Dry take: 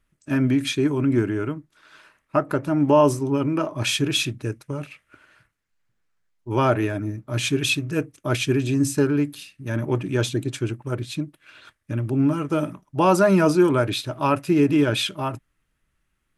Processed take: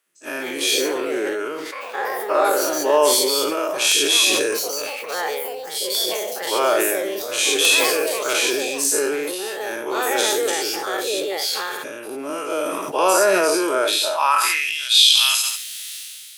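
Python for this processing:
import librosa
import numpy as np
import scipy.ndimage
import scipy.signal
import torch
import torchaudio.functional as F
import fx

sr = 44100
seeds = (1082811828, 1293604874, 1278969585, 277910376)

p1 = fx.spec_dilate(x, sr, span_ms=120)
p2 = fx.tilt_eq(p1, sr, slope=3.5)
p3 = (np.mod(10.0 ** (-1.0 / 20.0) * p2 + 1.0, 2.0) - 1.0) / 10.0 ** (-1.0 / 20.0)
p4 = fx.echo_pitch(p3, sr, ms=218, semitones=5, count=2, db_per_echo=-6.0)
p5 = fx.filter_sweep_highpass(p4, sr, from_hz=450.0, to_hz=3800.0, start_s=13.99, end_s=14.84, q=2.5)
p6 = p5 + fx.echo_feedback(p5, sr, ms=71, feedback_pct=35, wet_db=-15.0, dry=0)
p7 = fx.sustainer(p6, sr, db_per_s=23.0)
y = F.gain(torch.from_numpy(p7), -5.5).numpy()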